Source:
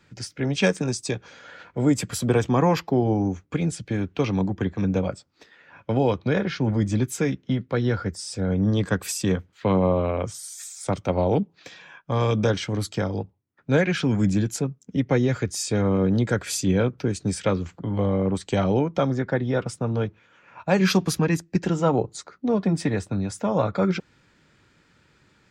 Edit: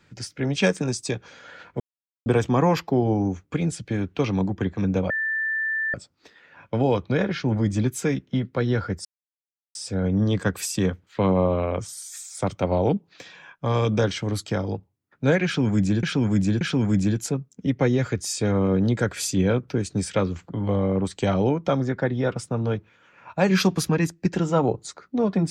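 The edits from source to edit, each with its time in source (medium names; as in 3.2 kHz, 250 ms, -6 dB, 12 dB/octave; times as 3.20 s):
1.80–2.26 s: mute
5.10 s: add tone 1.77 kHz -22.5 dBFS 0.84 s
8.21 s: insert silence 0.70 s
13.91–14.49 s: loop, 3 plays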